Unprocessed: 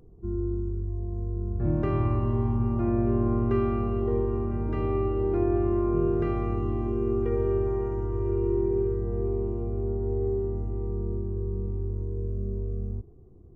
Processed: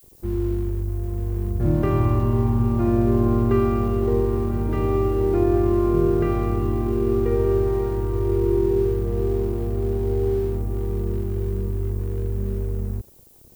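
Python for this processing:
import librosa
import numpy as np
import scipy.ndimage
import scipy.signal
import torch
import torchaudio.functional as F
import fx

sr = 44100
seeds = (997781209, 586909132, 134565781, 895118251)

y = np.sign(x) * np.maximum(np.abs(x) - 10.0 ** (-49.5 / 20.0), 0.0)
y = fx.dmg_noise_colour(y, sr, seeds[0], colour='violet', level_db=-59.0)
y = F.gain(torch.from_numpy(y), 6.0).numpy()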